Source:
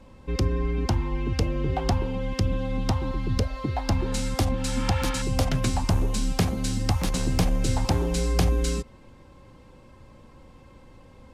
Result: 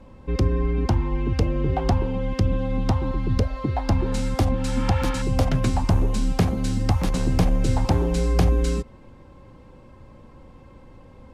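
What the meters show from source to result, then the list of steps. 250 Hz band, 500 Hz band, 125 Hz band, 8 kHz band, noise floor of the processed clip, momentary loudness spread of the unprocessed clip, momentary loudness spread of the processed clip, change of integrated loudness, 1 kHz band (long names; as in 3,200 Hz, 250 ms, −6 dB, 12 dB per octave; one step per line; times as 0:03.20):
+3.5 dB, +3.0 dB, +3.5 dB, −4.0 dB, −47 dBFS, 4 LU, 3 LU, +3.0 dB, +2.5 dB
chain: high-shelf EQ 2,400 Hz −8.5 dB
level +3.5 dB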